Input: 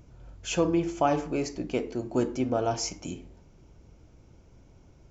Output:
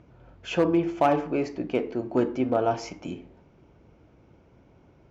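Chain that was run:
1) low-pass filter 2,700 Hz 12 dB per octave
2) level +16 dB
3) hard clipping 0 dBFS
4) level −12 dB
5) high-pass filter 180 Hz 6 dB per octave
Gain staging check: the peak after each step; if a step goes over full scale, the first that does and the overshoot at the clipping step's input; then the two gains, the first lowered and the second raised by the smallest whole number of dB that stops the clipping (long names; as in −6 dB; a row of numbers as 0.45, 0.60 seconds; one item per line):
−11.5, +4.5, 0.0, −12.0, −10.5 dBFS
step 2, 4.5 dB
step 2 +11 dB, step 4 −7 dB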